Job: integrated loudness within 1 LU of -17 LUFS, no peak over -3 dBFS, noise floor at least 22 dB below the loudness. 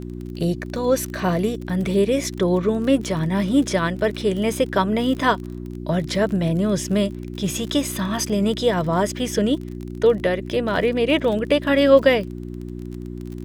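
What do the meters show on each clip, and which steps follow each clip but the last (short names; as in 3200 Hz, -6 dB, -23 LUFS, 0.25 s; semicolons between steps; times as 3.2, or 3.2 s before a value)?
ticks 34/s; hum 60 Hz; harmonics up to 360 Hz; hum level -30 dBFS; loudness -21.0 LUFS; peak -3.0 dBFS; loudness target -17.0 LUFS
-> de-click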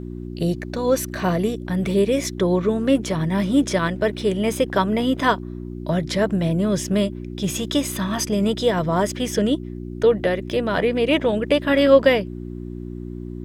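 ticks 0.45/s; hum 60 Hz; harmonics up to 360 Hz; hum level -30 dBFS
-> de-hum 60 Hz, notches 6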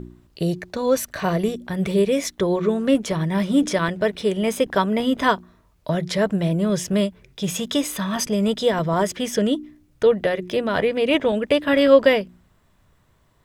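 hum none; loudness -21.5 LUFS; peak -3.5 dBFS; loudness target -17.0 LUFS
-> gain +4.5 dB; limiter -3 dBFS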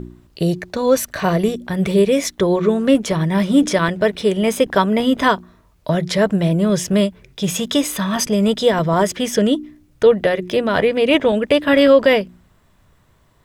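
loudness -17.0 LUFS; peak -3.0 dBFS; noise floor -55 dBFS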